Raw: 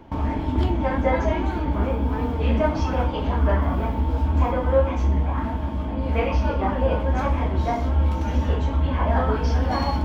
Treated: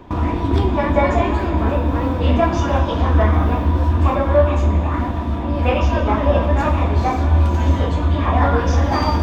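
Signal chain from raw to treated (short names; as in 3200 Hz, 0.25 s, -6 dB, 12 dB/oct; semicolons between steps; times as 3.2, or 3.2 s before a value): speed mistake 44.1 kHz file played as 48 kHz; Schroeder reverb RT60 3.3 s, combs from 30 ms, DRR 9.5 dB; gain +5 dB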